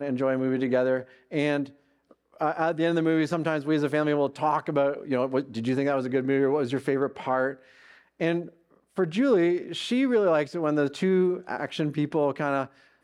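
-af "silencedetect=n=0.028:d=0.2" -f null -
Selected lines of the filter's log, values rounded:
silence_start: 1.01
silence_end: 1.33 | silence_duration: 0.32
silence_start: 1.64
silence_end: 2.41 | silence_duration: 0.77
silence_start: 7.53
silence_end: 8.21 | silence_duration: 0.68
silence_start: 8.45
silence_end: 8.98 | silence_duration: 0.54
silence_start: 12.65
silence_end: 13.03 | silence_duration: 0.38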